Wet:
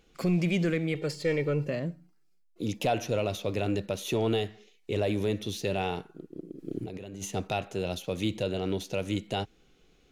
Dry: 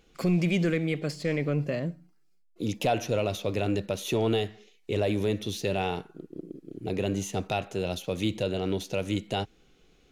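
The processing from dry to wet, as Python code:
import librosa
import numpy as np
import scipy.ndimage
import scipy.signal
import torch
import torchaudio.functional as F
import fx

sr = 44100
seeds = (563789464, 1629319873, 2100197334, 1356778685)

y = fx.comb(x, sr, ms=2.2, depth=0.74, at=(0.95, 1.68))
y = fx.over_compress(y, sr, threshold_db=-38.0, ratio=-1.0, at=(6.58, 7.24), fade=0.02)
y = y * librosa.db_to_amplitude(-1.5)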